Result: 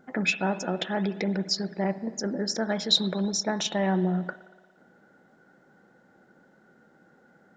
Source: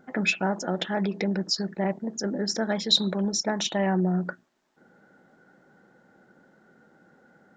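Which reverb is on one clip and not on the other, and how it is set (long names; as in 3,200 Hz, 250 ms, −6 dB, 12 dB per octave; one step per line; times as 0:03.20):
spring reverb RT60 1.7 s, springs 57 ms, chirp 80 ms, DRR 14.5 dB
level −1 dB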